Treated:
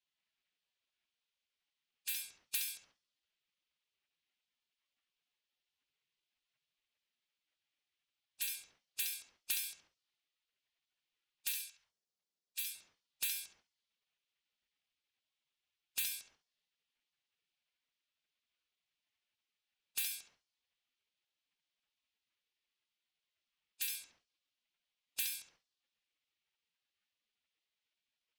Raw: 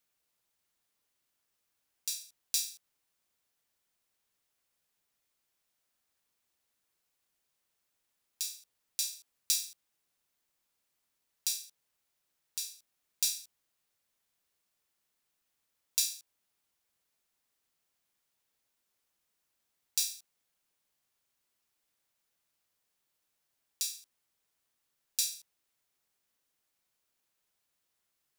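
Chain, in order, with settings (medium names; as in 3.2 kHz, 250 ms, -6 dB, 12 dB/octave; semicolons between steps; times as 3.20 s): compression 4:1, threshold -35 dBFS, peak gain reduction 10 dB; level-controlled noise filter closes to 1.4 kHz, open at -38.5 dBFS; 11.52–12.75 s: amplifier tone stack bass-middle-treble 10-0-10; bucket-brigade echo 69 ms, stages 2048, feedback 34%, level -7 dB; spectral gate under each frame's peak -15 dB weak; trim +14 dB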